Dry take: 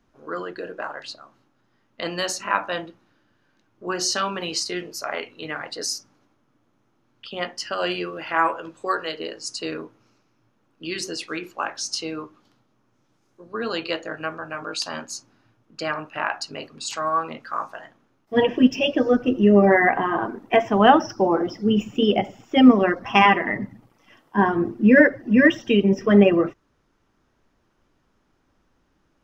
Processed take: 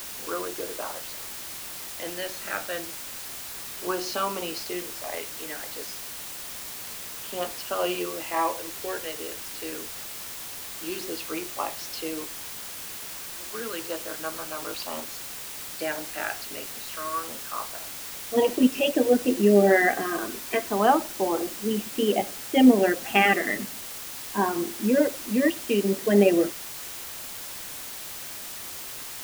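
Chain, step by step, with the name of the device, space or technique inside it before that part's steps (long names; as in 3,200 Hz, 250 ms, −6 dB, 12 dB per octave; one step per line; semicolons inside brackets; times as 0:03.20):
shortwave radio (band-pass filter 250–2,900 Hz; amplitude tremolo 0.26 Hz, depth 46%; auto-filter notch saw down 0.29 Hz 750–2,400 Hz; white noise bed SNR 10 dB)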